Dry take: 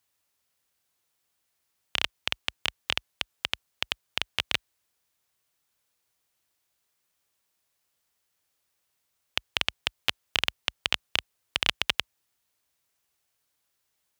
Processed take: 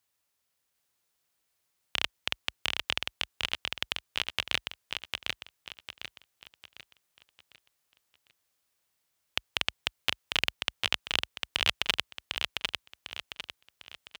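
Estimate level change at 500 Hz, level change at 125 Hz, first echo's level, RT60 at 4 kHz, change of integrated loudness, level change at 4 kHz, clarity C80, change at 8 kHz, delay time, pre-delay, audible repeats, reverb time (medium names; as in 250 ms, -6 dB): -0.5 dB, -0.5 dB, -4.0 dB, no reverb, -2.5 dB, -1.0 dB, no reverb, -1.0 dB, 751 ms, no reverb, 4, no reverb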